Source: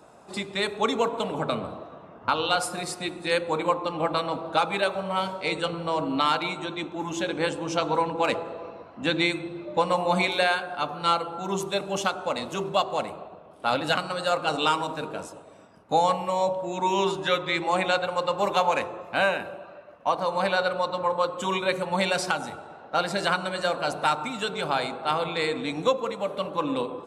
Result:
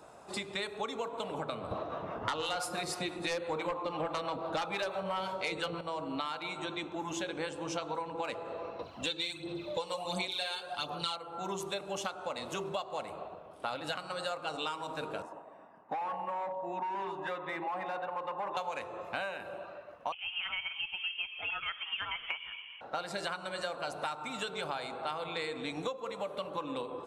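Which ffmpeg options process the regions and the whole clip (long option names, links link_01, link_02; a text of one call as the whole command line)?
ffmpeg -i in.wav -filter_complex "[0:a]asettb=1/sr,asplit=3[link_01][link_02][link_03];[link_01]atrim=end=1.714[link_04];[link_02]atrim=start=1.71:end=5.81,asetpts=PTS-STARTPTS,afade=type=in:duration=0.004:curve=qsin,afade=type=out:start_time=4.096:duration=0.004:curve=qsin,equalizer=frequency=8600:width_type=o:width=0.47:gain=-5,acrossover=split=600[link_05][link_06];[link_05]aeval=exprs='val(0)*(1-0.5/2+0.5/2*cos(2*PI*6*n/s))':channel_layout=same[link_07];[link_06]aeval=exprs='val(0)*(1-0.5/2-0.5/2*cos(2*PI*6*n/s))':channel_layout=same[link_08];[link_07][link_08]amix=inputs=2:normalize=0,aeval=exprs='0.335*sin(PI/2*2.82*val(0)/0.335)':channel_layout=same[link_09];[link_03]atrim=start=5.806[link_10];[link_04][link_09]acrossfade=duration=0.004:curve1=hsin:curve2=qsin[link_11];[link_11][link_10]acrossfade=duration=0.004:curve1=qsin:curve2=hsin,asettb=1/sr,asplit=3[link_12][link_13][link_14];[link_12]atrim=end=8.794[link_15];[link_13]atrim=start=8.79:end=11.16,asetpts=PTS-STARTPTS,afade=type=in:duration=0.004:curve=qsin,afade=type=out:start_time=2.366:duration=0.004:curve=qsin,highshelf=frequency=2600:width_type=q:width=1.5:gain=8,aphaser=in_gain=1:out_gain=1:delay=2.3:decay=0.51:speed=1.4:type=sinusoidal[link_16];[link_14]atrim=start=11.156[link_17];[link_15][link_16]acrossfade=duration=0.004:curve1=hsin:curve2=qsin[link_18];[link_18][link_17]acrossfade=duration=0.004:curve1=qsin:curve2=hsin,asettb=1/sr,asplit=3[link_19][link_20][link_21];[link_19]atrim=end=15.224[link_22];[link_20]atrim=start=15.22:end=18.57,asetpts=PTS-STARTPTS,afade=type=in:duration=0.004:curve=qsin,afade=type=out:start_time=3.346:duration=0.004:curve=qsin,aecho=1:1:1.1:0.43,atrim=end_sample=147735,asoftclip=type=hard:threshold=-23.5dB,acrossover=split=190 2100:gain=0.0708 1 0.0708[link_23][link_24][link_25];[link_23][link_24][link_25]amix=inputs=3:normalize=0[link_26];[link_21]atrim=start=18.566[link_27];[link_22][link_26]acrossfade=duration=0.004:curve1=hsin:curve2=qsin[link_28];[link_28][link_27]acrossfade=duration=0.004:curve1=qsin:curve2=hsin,asettb=1/sr,asplit=3[link_29][link_30][link_31];[link_29]atrim=end=20.124[link_32];[link_30]atrim=start=20.12:end=22.81,asetpts=PTS-STARTPTS,afade=type=in:duration=0.004:curve=qsin,afade=type=out:start_time=2.686:duration=0.004:curve=qsin,highpass=850,lowpass=frequency=3100:width_type=q:width=0.5098,lowpass=frequency=3100:width_type=q:width=0.6013,lowpass=frequency=3100:width_type=q:width=0.9,lowpass=frequency=3100:width_type=q:width=2.563,afreqshift=-3700[link_33];[link_31]atrim=start=22.806[link_34];[link_32][link_33]acrossfade=duration=0.004:curve1=hsin:curve2=qsin[link_35];[link_35][link_34]acrossfade=duration=0.004:curve1=qsin:curve2=hsin,equalizer=frequency=210:width=1:gain=-5,acompressor=threshold=-33dB:ratio=6,volume=-1dB" out.wav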